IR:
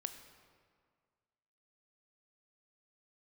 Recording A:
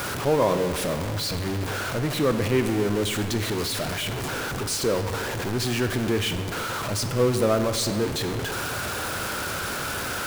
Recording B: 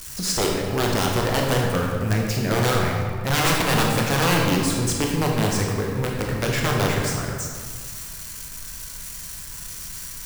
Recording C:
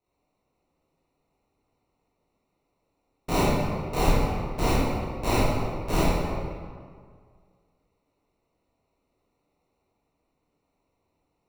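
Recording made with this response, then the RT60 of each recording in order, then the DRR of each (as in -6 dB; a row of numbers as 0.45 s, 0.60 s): A; 1.9 s, 1.9 s, 1.9 s; 8.0 dB, -1.0 dB, -10.5 dB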